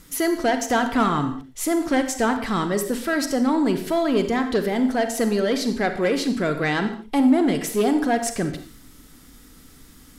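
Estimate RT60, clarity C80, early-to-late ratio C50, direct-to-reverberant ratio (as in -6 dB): not exponential, 12.0 dB, 8.5 dB, 7.5 dB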